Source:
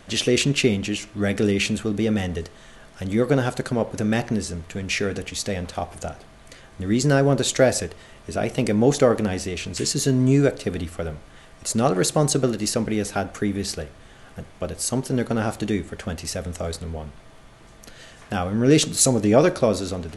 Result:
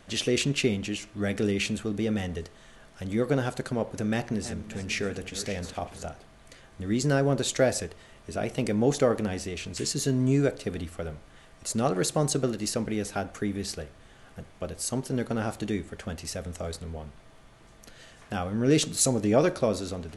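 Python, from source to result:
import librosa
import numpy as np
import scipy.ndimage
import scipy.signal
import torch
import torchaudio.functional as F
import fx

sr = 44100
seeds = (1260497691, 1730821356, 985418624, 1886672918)

y = fx.reverse_delay_fb(x, sr, ms=299, feedback_pct=54, wet_db=-12.0, at=(4.03, 6.05))
y = y * librosa.db_to_amplitude(-6.0)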